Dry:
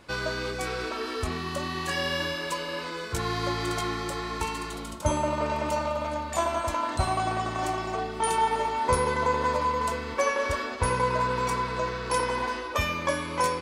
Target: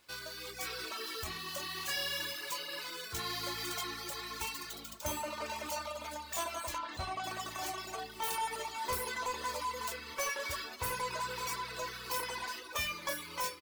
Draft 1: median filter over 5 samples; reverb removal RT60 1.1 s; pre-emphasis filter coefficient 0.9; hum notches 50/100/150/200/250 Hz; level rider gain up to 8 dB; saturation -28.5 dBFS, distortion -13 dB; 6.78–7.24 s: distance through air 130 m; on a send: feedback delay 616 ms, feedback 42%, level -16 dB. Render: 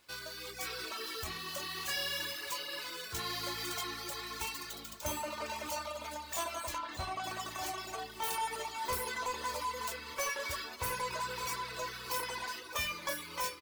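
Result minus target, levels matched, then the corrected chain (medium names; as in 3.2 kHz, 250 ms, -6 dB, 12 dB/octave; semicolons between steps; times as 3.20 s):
echo-to-direct +6.5 dB
median filter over 5 samples; reverb removal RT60 1.1 s; pre-emphasis filter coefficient 0.9; hum notches 50/100/150/200/250 Hz; level rider gain up to 8 dB; saturation -28.5 dBFS, distortion -13 dB; 6.78–7.24 s: distance through air 130 m; on a send: feedback delay 616 ms, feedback 42%, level -22.5 dB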